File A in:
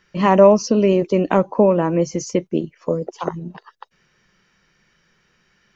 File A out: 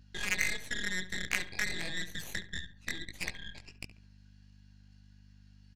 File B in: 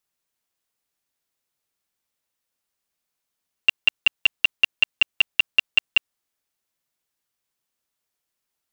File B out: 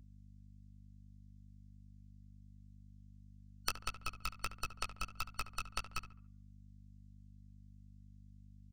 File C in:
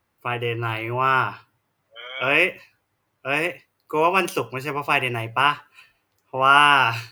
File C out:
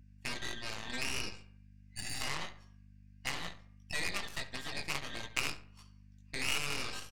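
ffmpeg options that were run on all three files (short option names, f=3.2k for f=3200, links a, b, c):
-filter_complex "[0:a]afftfilt=real='real(if(lt(b,272),68*(eq(floor(b/68),0)*1+eq(floor(b/68),1)*0+eq(floor(b/68),2)*3+eq(floor(b/68),3)*2)+mod(b,68),b),0)':imag='imag(if(lt(b,272),68*(eq(floor(b/68),0)*1+eq(floor(b/68),1)*0+eq(floor(b/68),2)*3+eq(floor(b/68),3)*2)+mod(b,68),b),0)':win_size=2048:overlap=0.75,acrossover=split=2900[a][b];[b]acompressor=threshold=-34dB:ratio=4:attack=1:release=60[c];[a][c]amix=inputs=2:normalize=0,lowpass=f=7.1k:w=0.5412,lowpass=f=7.1k:w=1.3066,equalizer=f=110:t=o:w=1.4:g=-9.5,bandreject=f=236.5:t=h:w=4,bandreject=f=473:t=h:w=4,bandreject=f=709.5:t=h:w=4,bandreject=f=946:t=h:w=4,bandreject=f=1.1825k:t=h:w=4,bandreject=f=1.419k:t=h:w=4,bandreject=f=1.6555k:t=h:w=4,bandreject=f=1.892k:t=h:w=4,bandreject=f=2.1285k:t=h:w=4,bandreject=f=2.365k:t=h:w=4,bandreject=f=2.6015k:t=h:w=4,bandreject=f=2.838k:t=h:w=4,acompressor=threshold=-34dB:ratio=3,crystalizer=i=8.5:c=0,flanger=delay=15.5:depth=5.3:speed=1.5,aeval=exprs='0.237*(cos(1*acos(clip(val(0)/0.237,-1,1)))-cos(1*PI/2))+0.0841*(cos(3*acos(clip(val(0)/0.237,-1,1)))-cos(3*PI/2))+0.00944*(cos(5*acos(clip(val(0)/0.237,-1,1)))-cos(5*PI/2))+0.0168*(cos(8*acos(clip(val(0)/0.237,-1,1)))-cos(8*PI/2))':c=same,aeval=exprs='val(0)+0.002*(sin(2*PI*50*n/s)+sin(2*PI*2*50*n/s)/2+sin(2*PI*3*50*n/s)/3+sin(2*PI*4*50*n/s)/4+sin(2*PI*5*50*n/s)/5)':c=same,asplit=2[d][e];[e]adelay=70,lowpass=f=2.3k:p=1,volume=-12.5dB,asplit=2[f][g];[g]adelay=70,lowpass=f=2.3k:p=1,volume=0.4,asplit=2[h][i];[i]adelay=70,lowpass=f=2.3k:p=1,volume=0.4,asplit=2[j][k];[k]adelay=70,lowpass=f=2.3k:p=1,volume=0.4[l];[d][f][h][j][l]amix=inputs=5:normalize=0,volume=-2dB"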